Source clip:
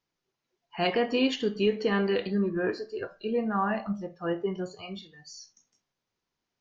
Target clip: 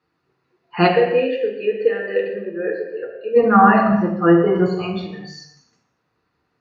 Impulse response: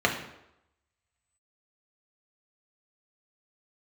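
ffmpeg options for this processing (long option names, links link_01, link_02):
-filter_complex "[0:a]asplit=3[link_01][link_02][link_03];[link_01]afade=type=out:start_time=0.86:duration=0.02[link_04];[link_02]asplit=3[link_05][link_06][link_07];[link_05]bandpass=frequency=530:width_type=q:width=8,volume=0dB[link_08];[link_06]bandpass=frequency=1840:width_type=q:width=8,volume=-6dB[link_09];[link_07]bandpass=frequency=2480:width_type=q:width=8,volume=-9dB[link_10];[link_08][link_09][link_10]amix=inputs=3:normalize=0,afade=type=in:start_time=0.86:duration=0.02,afade=type=out:start_time=3.35:duration=0.02[link_11];[link_03]afade=type=in:start_time=3.35:duration=0.02[link_12];[link_04][link_11][link_12]amix=inputs=3:normalize=0[link_13];[1:a]atrim=start_sample=2205,afade=type=out:start_time=0.3:duration=0.01,atrim=end_sample=13671,asetrate=28224,aresample=44100[link_14];[link_13][link_14]afir=irnorm=-1:irlink=0,volume=-2dB"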